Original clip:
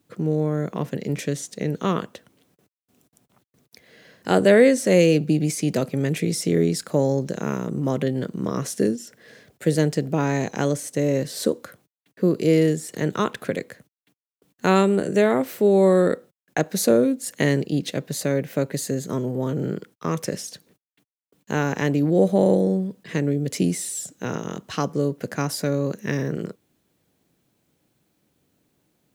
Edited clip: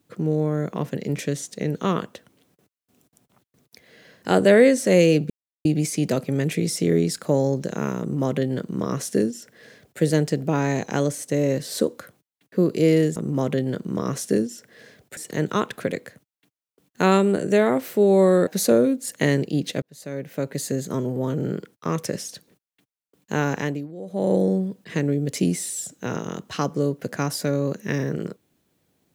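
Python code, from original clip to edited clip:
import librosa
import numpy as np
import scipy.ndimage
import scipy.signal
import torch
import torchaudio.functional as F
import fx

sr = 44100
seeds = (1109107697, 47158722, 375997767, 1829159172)

y = fx.edit(x, sr, fx.insert_silence(at_s=5.3, length_s=0.35),
    fx.duplicate(start_s=7.65, length_s=2.01, to_s=12.81),
    fx.cut(start_s=16.11, length_s=0.55),
    fx.fade_in_span(start_s=18.01, length_s=0.89),
    fx.fade_down_up(start_s=21.72, length_s=0.88, db=-18.5, fade_s=0.35), tone=tone)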